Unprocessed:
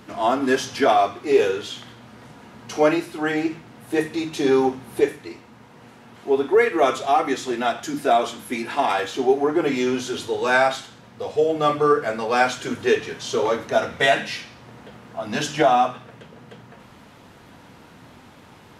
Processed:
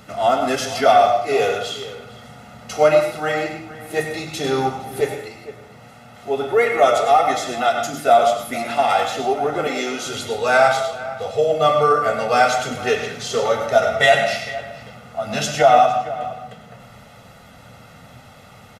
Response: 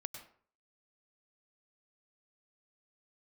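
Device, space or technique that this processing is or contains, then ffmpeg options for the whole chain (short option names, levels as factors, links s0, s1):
microphone above a desk: -filter_complex "[0:a]aecho=1:1:1.5:0.71[s0];[1:a]atrim=start_sample=2205[s1];[s0][s1]afir=irnorm=-1:irlink=0,asettb=1/sr,asplit=3[s2][s3][s4];[s2]atrim=end=9.674[s5];[s3]atrim=start=9.67:end=10.07,asetpts=PTS-STARTPTS,afade=t=in:d=0.004:c=qsin,afade=t=out:st=0.396:d=0.004:c=qsin,highpass=f=240:w=0.5412,highpass=f=240:w=1.3066[s6];[s4]atrim=start=10.066[s7];[s5][s6]acrossfade=d=0.004:c1=hsin:c2=qsin[s8];[s8][s7]acrossfade=d=0.004:c1=qsin:c2=hsin,highshelf=f=7200:g=4.5,asplit=2[s9][s10];[s10]adelay=460.6,volume=0.178,highshelf=f=4000:g=-10.4[s11];[s9][s11]amix=inputs=2:normalize=0,volume=1.58"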